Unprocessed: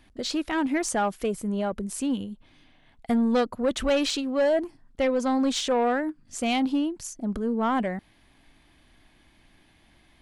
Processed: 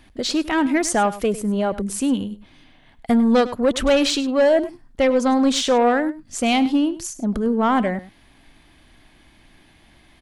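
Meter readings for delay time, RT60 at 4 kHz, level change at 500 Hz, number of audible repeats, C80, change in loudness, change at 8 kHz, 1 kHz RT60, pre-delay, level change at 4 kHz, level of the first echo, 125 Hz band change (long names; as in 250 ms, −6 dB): 101 ms, no reverb audible, +6.5 dB, 1, no reverb audible, +6.5 dB, +6.5 dB, no reverb audible, no reverb audible, +6.5 dB, −16.0 dB, can't be measured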